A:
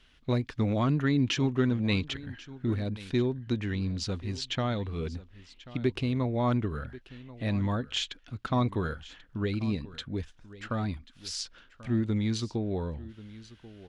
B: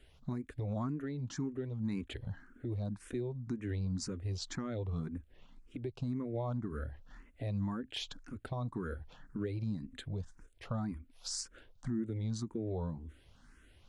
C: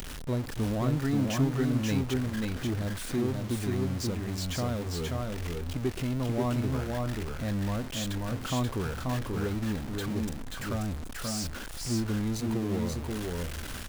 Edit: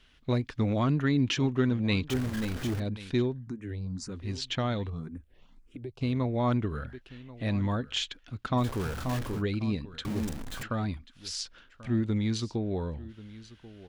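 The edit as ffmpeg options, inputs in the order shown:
-filter_complex "[2:a]asplit=3[a][b][c];[1:a]asplit=2[d][e];[0:a]asplit=6[f][g][h][i][j][k];[f]atrim=end=2.102[l];[a]atrim=start=2.098:end=2.802[m];[g]atrim=start=2.798:end=3.48[n];[d]atrim=start=3.24:end=4.31[o];[h]atrim=start=4.07:end=4.902[p];[e]atrim=start=4.898:end=6.012[q];[i]atrim=start=6.008:end=8.67[r];[b]atrim=start=8.57:end=9.43[s];[j]atrim=start=9.33:end=10.052[t];[c]atrim=start=10.048:end=10.632[u];[k]atrim=start=10.628[v];[l][m]acrossfade=d=0.004:c1=hsin:c2=hsin[w];[w][n]acrossfade=d=0.004:c1=hsin:c2=hsin[x];[x][o]acrossfade=d=0.24:c1=tri:c2=tri[y];[y][p]acrossfade=d=0.24:c1=tri:c2=tri[z];[z][q]acrossfade=d=0.004:c1=hsin:c2=hsin[aa];[aa][r]acrossfade=d=0.004:c1=hsin:c2=hsin[ab];[ab][s]acrossfade=d=0.1:c1=tri:c2=tri[ac];[ac][t]acrossfade=d=0.1:c1=tri:c2=tri[ad];[ad][u]acrossfade=d=0.004:c1=hsin:c2=hsin[ae];[ae][v]acrossfade=d=0.004:c1=hsin:c2=hsin"

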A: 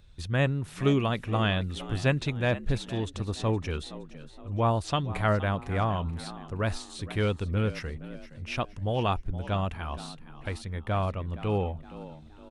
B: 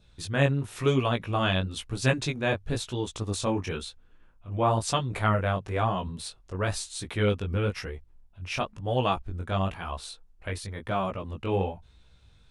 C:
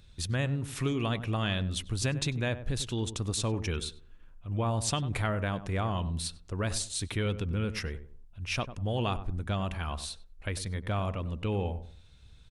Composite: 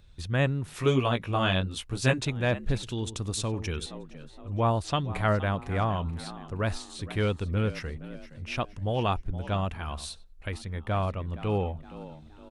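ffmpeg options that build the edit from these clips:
-filter_complex "[2:a]asplit=2[a][b];[0:a]asplit=4[c][d][e][f];[c]atrim=end=0.742[g];[1:a]atrim=start=0.738:end=2.252[h];[d]atrim=start=2.248:end=2.832[i];[a]atrim=start=2.828:end=3.862[j];[e]atrim=start=3.858:end=9.852[k];[b]atrim=start=9.848:end=10.532[l];[f]atrim=start=10.528[m];[g][h]acrossfade=d=0.004:c1=hsin:c2=hsin[n];[n][i]acrossfade=d=0.004:c1=hsin:c2=hsin[o];[o][j]acrossfade=d=0.004:c1=hsin:c2=hsin[p];[p][k]acrossfade=d=0.004:c1=hsin:c2=hsin[q];[q][l]acrossfade=d=0.004:c1=hsin:c2=hsin[r];[r][m]acrossfade=d=0.004:c1=hsin:c2=hsin"

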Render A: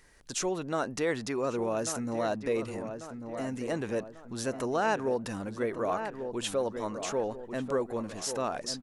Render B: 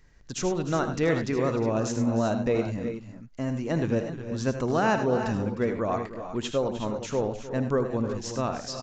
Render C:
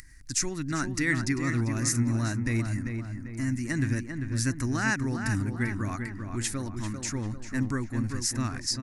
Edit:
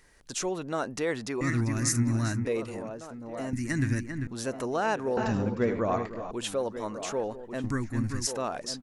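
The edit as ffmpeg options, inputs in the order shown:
-filter_complex "[2:a]asplit=3[a][b][c];[0:a]asplit=5[d][e][f][g][h];[d]atrim=end=1.412[i];[a]atrim=start=1.408:end=2.452[j];[e]atrim=start=2.448:end=3.532[k];[b]atrim=start=3.528:end=4.272[l];[f]atrim=start=4.268:end=5.172[m];[1:a]atrim=start=5.168:end=6.312[n];[g]atrim=start=6.308:end=7.642[o];[c]atrim=start=7.638:end=8.272[p];[h]atrim=start=8.268[q];[i][j]acrossfade=d=0.004:c1=hsin:c2=hsin[r];[r][k]acrossfade=d=0.004:c1=hsin:c2=hsin[s];[s][l]acrossfade=d=0.004:c1=hsin:c2=hsin[t];[t][m]acrossfade=d=0.004:c1=hsin:c2=hsin[u];[u][n]acrossfade=d=0.004:c1=hsin:c2=hsin[v];[v][o]acrossfade=d=0.004:c1=hsin:c2=hsin[w];[w][p]acrossfade=d=0.004:c1=hsin:c2=hsin[x];[x][q]acrossfade=d=0.004:c1=hsin:c2=hsin"

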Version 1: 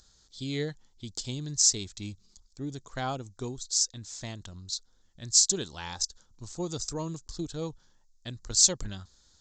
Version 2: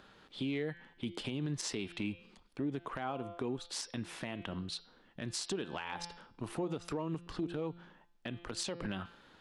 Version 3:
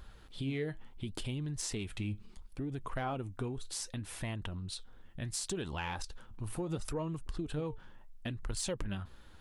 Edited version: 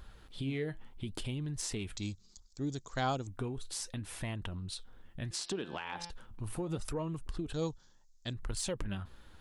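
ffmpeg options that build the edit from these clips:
-filter_complex "[0:a]asplit=2[a][b];[2:a]asplit=4[c][d][e][f];[c]atrim=end=1.972[g];[a]atrim=start=1.968:end=3.272[h];[d]atrim=start=3.268:end=5.312[i];[1:a]atrim=start=5.308:end=6.102[j];[e]atrim=start=6.098:end=7.532[k];[b]atrim=start=7.528:end=8.332[l];[f]atrim=start=8.328[m];[g][h]acrossfade=d=0.004:c1=hsin:c2=hsin[n];[n][i]acrossfade=d=0.004:c1=hsin:c2=hsin[o];[o][j]acrossfade=d=0.004:c1=hsin:c2=hsin[p];[p][k]acrossfade=d=0.004:c1=hsin:c2=hsin[q];[q][l]acrossfade=d=0.004:c1=hsin:c2=hsin[r];[r][m]acrossfade=d=0.004:c1=hsin:c2=hsin"

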